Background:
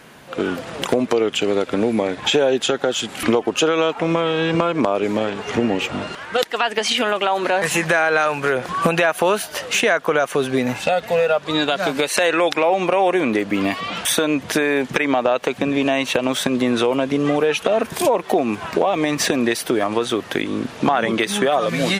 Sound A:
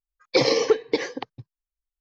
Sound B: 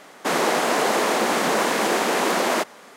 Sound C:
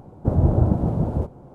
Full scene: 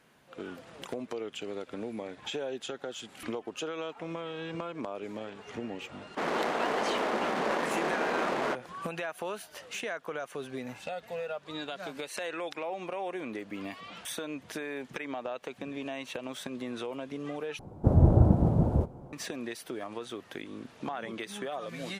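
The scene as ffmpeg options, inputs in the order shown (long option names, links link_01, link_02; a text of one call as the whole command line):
ffmpeg -i bed.wav -i cue0.wav -i cue1.wav -i cue2.wav -filter_complex "[0:a]volume=-19dB[link_01];[2:a]adynamicsmooth=sensitivity=1.5:basefreq=1300[link_02];[link_01]asplit=2[link_03][link_04];[link_03]atrim=end=17.594[link_05];[3:a]atrim=end=1.54,asetpts=PTS-STARTPTS,volume=-2.5dB[link_06];[link_04]atrim=start=19.126[link_07];[link_02]atrim=end=2.96,asetpts=PTS-STARTPTS,volume=-9dB,afade=type=in:duration=0.004:curve=hsin,afade=type=out:start_time=2.956:duration=0.004:curve=hsin,adelay=5920[link_08];[link_05][link_06]acrossfade=duration=0.004:curve1=hsin:curve2=hsin[link_09];[link_09][link_07]acrossfade=duration=0.004:curve1=hsin:curve2=hsin[link_10];[link_10][link_08]amix=inputs=2:normalize=0" out.wav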